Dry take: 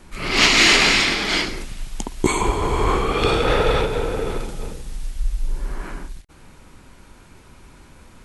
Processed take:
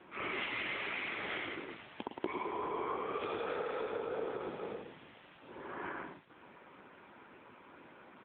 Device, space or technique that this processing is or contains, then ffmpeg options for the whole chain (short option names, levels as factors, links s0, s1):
voicemail: -af "highpass=320,lowpass=2600,aecho=1:1:109:0.501,acompressor=threshold=0.0282:ratio=8,volume=0.708" -ar 8000 -c:a libopencore_amrnb -b:a 7950